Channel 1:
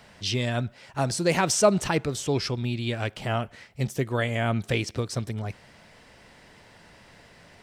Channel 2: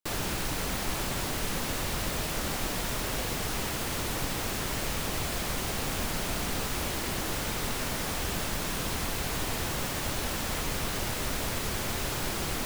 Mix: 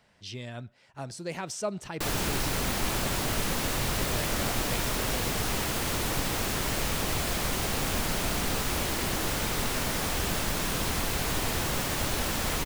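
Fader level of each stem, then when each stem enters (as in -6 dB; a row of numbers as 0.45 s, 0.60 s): -12.5 dB, +2.5 dB; 0.00 s, 1.95 s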